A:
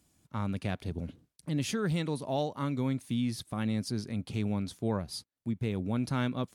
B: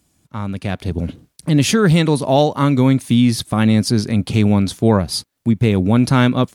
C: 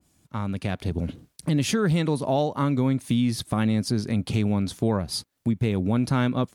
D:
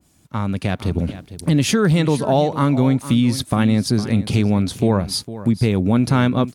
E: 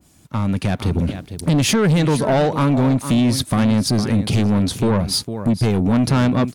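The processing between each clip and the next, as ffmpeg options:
-af "dynaudnorm=f=590:g=3:m=10.5dB,volume=7dB"
-af "acompressor=threshold=-22dB:ratio=2,adynamicequalizer=threshold=0.0158:dfrequency=1900:dqfactor=0.7:tfrequency=1900:tqfactor=0.7:attack=5:release=100:ratio=0.375:range=2:mode=cutabove:tftype=highshelf,volume=-2.5dB"
-af "aecho=1:1:456:0.188,volume=6.5dB"
-af "asoftclip=type=tanh:threshold=-16dB,volume=4.5dB"

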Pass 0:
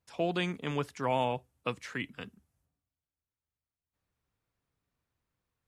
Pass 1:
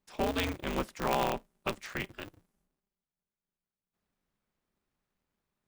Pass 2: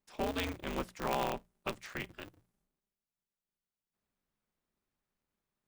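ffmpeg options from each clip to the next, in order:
-af "aeval=exprs='val(0)*sgn(sin(2*PI*100*n/s))':c=same"
-af "bandreject=f=60:t=h:w=6,bandreject=f=120:t=h:w=6,bandreject=f=180:t=h:w=6,volume=-4dB"

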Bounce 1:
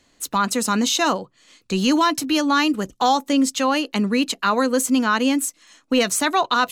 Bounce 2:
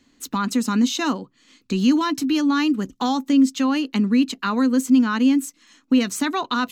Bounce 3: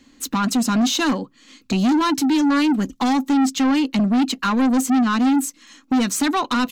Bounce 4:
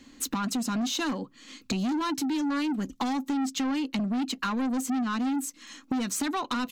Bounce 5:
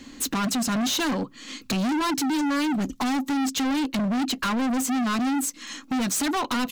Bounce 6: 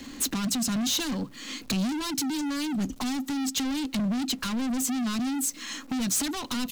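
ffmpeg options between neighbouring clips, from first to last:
-filter_complex "[0:a]equalizer=f=250:t=o:w=0.67:g=11,equalizer=f=630:t=o:w=0.67:g=-7,equalizer=f=10k:t=o:w=0.67:g=-7,asplit=2[a][b];[b]acompressor=threshold=-20dB:ratio=6,volume=0dB[c];[a][c]amix=inputs=2:normalize=0,volume=-8dB"
-af "aecho=1:1:3.7:0.3,asoftclip=type=tanh:threshold=-20.5dB,volume=6dB"
-af "acompressor=threshold=-28dB:ratio=6"
-af "volume=31.5dB,asoftclip=hard,volume=-31.5dB,volume=8.5dB"
-filter_complex "[0:a]aeval=exprs='val(0)+0.5*0.00447*sgn(val(0))':c=same,acrossover=split=240|3000[a][b][c];[b]acompressor=threshold=-36dB:ratio=6[d];[a][d][c]amix=inputs=3:normalize=0"

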